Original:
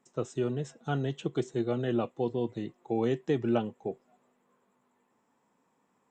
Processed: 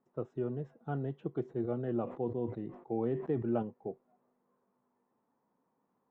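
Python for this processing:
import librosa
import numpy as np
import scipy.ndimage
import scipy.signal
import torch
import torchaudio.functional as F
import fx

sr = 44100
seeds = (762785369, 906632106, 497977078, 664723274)

y = scipy.signal.sosfilt(scipy.signal.butter(2, 1200.0, 'lowpass', fs=sr, output='sos'), x)
y = fx.sustainer(y, sr, db_per_s=98.0, at=(1.43, 3.63))
y = y * 10.0 ** (-5.0 / 20.0)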